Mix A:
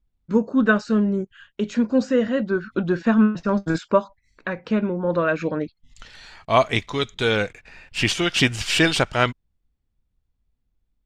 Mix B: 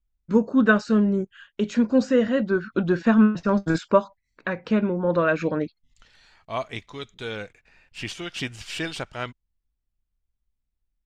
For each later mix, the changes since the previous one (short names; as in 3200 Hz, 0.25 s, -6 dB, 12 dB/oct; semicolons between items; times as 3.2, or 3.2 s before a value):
second voice -12.0 dB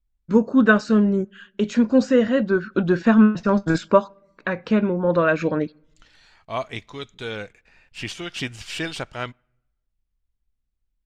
reverb: on, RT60 0.90 s